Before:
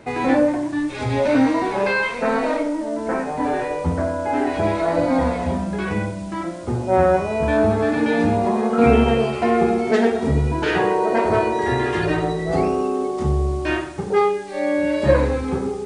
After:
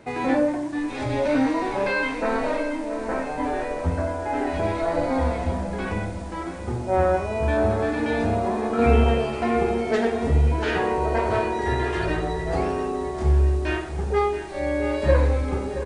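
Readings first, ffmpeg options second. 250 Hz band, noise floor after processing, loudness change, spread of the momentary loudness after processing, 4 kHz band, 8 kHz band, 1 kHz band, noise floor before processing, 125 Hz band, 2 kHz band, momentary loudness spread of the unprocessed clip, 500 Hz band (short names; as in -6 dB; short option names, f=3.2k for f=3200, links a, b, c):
-5.5 dB, -32 dBFS, -3.5 dB, 7 LU, -3.5 dB, n/a, -4.0 dB, -29 dBFS, -0.5 dB, -3.5 dB, 7 LU, -4.5 dB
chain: -af "asubboost=boost=6.5:cutoff=57,aecho=1:1:676|1352|2028|2704|3380|4056:0.251|0.141|0.0788|0.0441|0.0247|0.0138,volume=-4dB"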